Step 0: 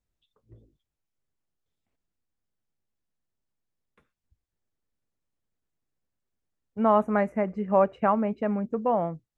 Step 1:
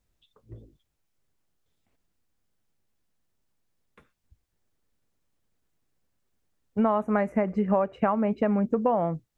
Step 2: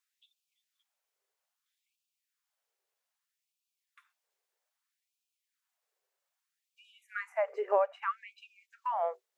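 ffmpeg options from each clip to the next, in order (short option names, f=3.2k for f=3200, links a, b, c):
-af "acompressor=threshold=-28dB:ratio=12,volume=8dB"
-af "afftfilt=real='re*gte(b*sr/1024,350*pow(2400/350,0.5+0.5*sin(2*PI*0.62*pts/sr)))':imag='im*gte(b*sr/1024,350*pow(2400/350,0.5+0.5*sin(2*PI*0.62*pts/sr)))':win_size=1024:overlap=0.75,volume=-2dB"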